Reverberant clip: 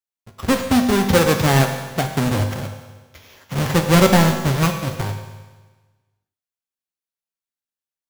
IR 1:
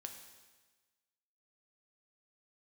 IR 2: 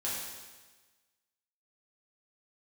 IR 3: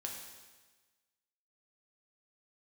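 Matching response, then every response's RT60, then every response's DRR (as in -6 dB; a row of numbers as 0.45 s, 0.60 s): 1; 1.3 s, 1.3 s, 1.3 s; 4.0 dB, -8.0 dB, -0.5 dB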